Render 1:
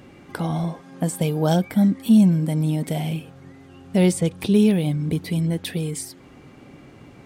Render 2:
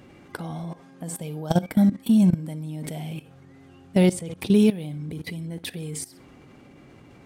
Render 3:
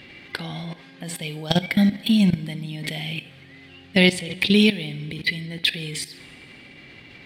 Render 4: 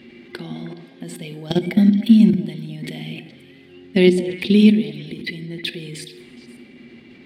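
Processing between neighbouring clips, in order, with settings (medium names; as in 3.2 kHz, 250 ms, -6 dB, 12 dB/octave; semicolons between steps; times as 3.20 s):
flutter echo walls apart 10.1 m, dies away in 0.23 s; level held to a coarse grid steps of 17 dB; trim +1.5 dB
high-order bell 2.9 kHz +15.5 dB; plate-style reverb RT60 2.1 s, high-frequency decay 0.85×, DRR 17 dB
small resonant body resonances 240/350 Hz, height 18 dB, ringing for 90 ms; on a send: repeats whose band climbs or falls 105 ms, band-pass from 230 Hz, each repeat 1.4 oct, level -5 dB; on the sum: trim -6 dB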